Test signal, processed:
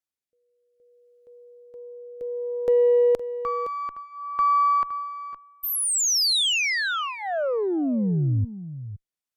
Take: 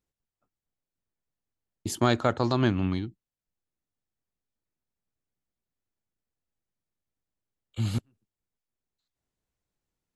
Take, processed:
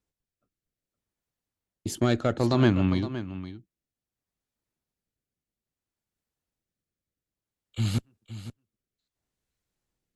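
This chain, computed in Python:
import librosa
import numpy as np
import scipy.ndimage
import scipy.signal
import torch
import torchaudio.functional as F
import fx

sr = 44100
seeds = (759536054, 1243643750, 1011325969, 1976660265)

p1 = 10.0 ** (-15.0 / 20.0) * np.tanh(x / 10.0 ** (-15.0 / 20.0))
p2 = fx.cheby_harmonics(p1, sr, harmonics=(3, 4, 6, 8), levels_db=(-21, -31, -41, -41), full_scale_db=-15.0)
p3 = fx.rotary(p2, sr, hz=0.6)
p4 = p3 + fx.echo_single(p3, sr, ms=515, db=-13.0, dry=0)
y = F.gain(torch.from_numpy(p4), 6.5).numpy()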